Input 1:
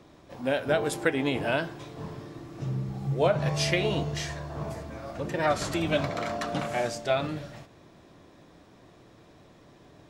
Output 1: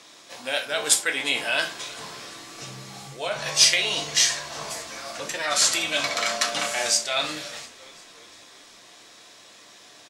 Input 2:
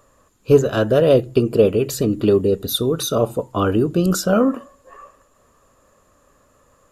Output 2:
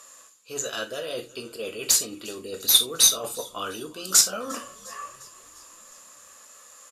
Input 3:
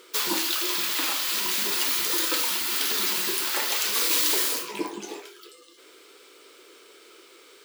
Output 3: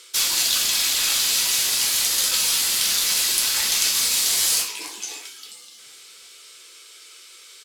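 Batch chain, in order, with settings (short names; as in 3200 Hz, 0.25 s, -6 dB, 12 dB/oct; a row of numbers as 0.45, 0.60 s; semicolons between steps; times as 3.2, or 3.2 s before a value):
reverse; compressor 20:1, threshold -26 dBFS; reverse; differentiator; frequency-shifting echo 0.352 s, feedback 61%, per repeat -68 Hz, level -22 dB; in parallel at -11 dB: bit-crush 5-bit; on the sum: LPF 8400 Hz 12 dB/oct; non-linear reverb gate 0.1 s falling, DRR 4.5 dB; normalise peaks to -2 dBFS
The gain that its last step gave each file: +21.0, +18.0, +12.5 dB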